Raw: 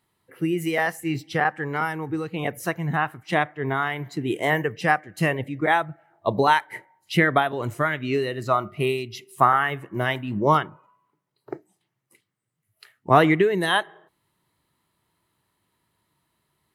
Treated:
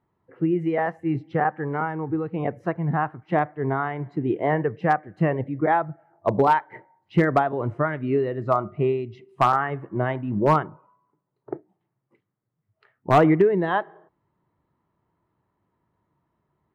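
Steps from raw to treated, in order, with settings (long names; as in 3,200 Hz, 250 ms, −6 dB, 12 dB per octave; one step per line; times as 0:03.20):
low-pass filter 1,100 Hz 12 dB per octave
hard clipping −11.5 dBFS, distortion −18 dB
level +2 dB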